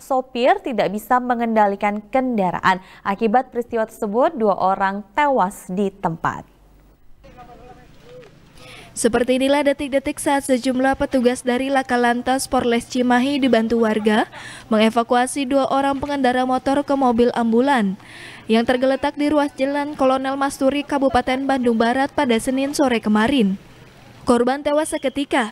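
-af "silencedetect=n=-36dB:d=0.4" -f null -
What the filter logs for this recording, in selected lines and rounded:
silence_start: 6.42
silence_end: 7.10 | silence_duration: 0.68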